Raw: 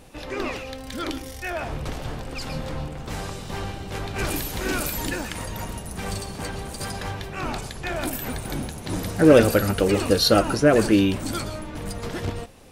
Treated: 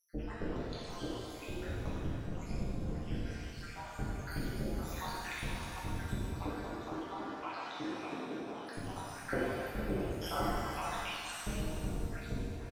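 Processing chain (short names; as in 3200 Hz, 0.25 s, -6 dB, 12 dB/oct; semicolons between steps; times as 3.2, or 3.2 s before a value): random spectral dropouts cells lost 82%; tilt -2.5 dB/oct; compressor 4:1, threshold -35 dBFS, peak gain reduction 22.5 dB; flange 0.33 Hz, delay 1.7 ms, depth 8.4 ms, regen -61%; AM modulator 170 Hz, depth 85%; 6.22–8.67 speaker cabinet 300–4800 Hz, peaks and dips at 310 Hz +10 dB, 730 Hz -3 dB, 1900 Hz -8 dB; echo 0.467 s -11.5 dB; shimmer reverb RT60 1.8 s, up +7 st, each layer -8 dB, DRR -6.5 dB; gain +2.5 dB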